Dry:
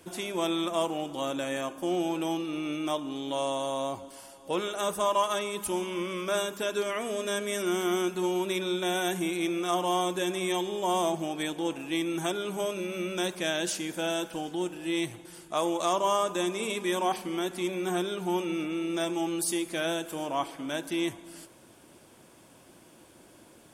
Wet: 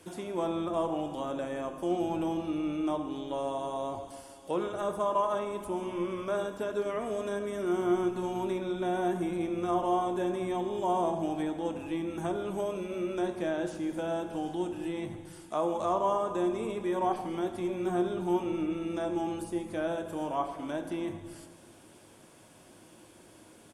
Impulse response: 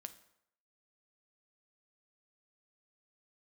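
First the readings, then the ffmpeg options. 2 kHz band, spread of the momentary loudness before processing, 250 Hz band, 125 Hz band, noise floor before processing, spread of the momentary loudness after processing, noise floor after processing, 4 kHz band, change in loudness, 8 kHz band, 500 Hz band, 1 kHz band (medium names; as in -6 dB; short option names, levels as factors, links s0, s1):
-8.5 dB, 6 LU, -1.0 dB, 0.0 dB, -55 dBFS, 7 LU, -56 dBFS, -13.5 dB, -2.0 dB, -14.5 dB, -1.0 dB, -1.5 dB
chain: -filter_complex "[0:a]acrossover=split=1400[s0][s1];[s1]acompressor=threshold=0.00282:ratio=6[s2];[s0][s2]amix=inputs=2:normalize=0,asplit=6[s3][s4][s5][s6][s7][s8];[s4]adelay=84,afreqshift=-120,volume=0.0794[s9];[s5]adelay=168,afreqshift=-240,volume=0.0519[s10];[s6]adelay=252,afreqshift=-360,volume=0.0335[s11];[s7]adelay=336,afreqshift=-480,volume=0.0219[s12];[s8]adelay=420,afreqshift=-600,volume=0.0141[s13];[s3][s9][s10][s11][s12][s13]amix=inputs=6:normalize=0[s14];[1:a]atrim=start_sample=2205,asetrate=22491,aresample=44100[s15];[s14][s15]afir=irnorm=-1:irlink=0,volume=1.12"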